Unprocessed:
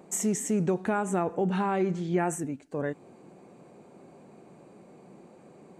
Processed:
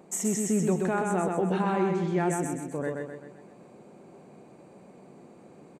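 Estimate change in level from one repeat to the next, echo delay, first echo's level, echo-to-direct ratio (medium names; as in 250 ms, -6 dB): -6.5 dB, 128 ms, -3.5 dB, -2.5 dB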